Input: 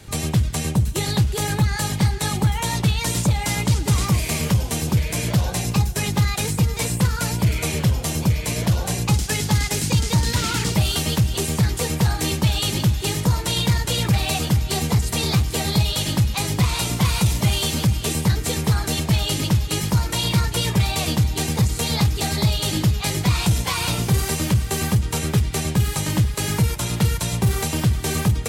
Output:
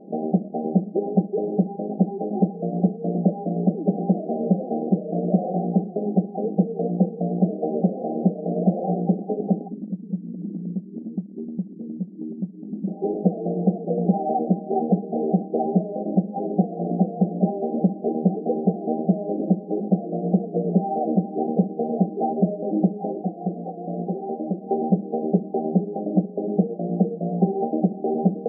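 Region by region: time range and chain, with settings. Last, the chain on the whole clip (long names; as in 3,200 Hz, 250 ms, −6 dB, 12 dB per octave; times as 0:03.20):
0:09.68–0:12.88: inverse Chebyshev band-stop filter 690–9,900 Hz, stop band 50 dB + downward compressor 5 to 1, threshold −26 dBFS
0:23.13–0:24.63: Chebyshev low-pass with heavy ripple 4,500 Hz, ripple 6 dB + hard clipping −21 dBFS
whole clip: brick-wall band-pass 170–800 Hz; dynamic equaliser 270 Hz, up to −6 dB, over −44 dBFS, Q 4; level +6.5 dB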